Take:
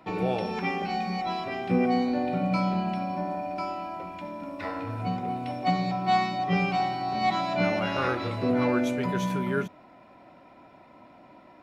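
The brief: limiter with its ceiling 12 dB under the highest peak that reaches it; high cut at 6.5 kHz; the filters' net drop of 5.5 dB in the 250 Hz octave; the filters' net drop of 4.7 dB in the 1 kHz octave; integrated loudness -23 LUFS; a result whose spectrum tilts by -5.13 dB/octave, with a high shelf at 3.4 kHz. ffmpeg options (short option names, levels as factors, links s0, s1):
-af "lowpass=6500,equalizer=f=250:t=o:g=-7,equalizer=f=1000:t=o:g=-6,highshelf=f=3400:g=-8.5,volume=5.31,alimiter=limit=0.188:level=0:latency=1"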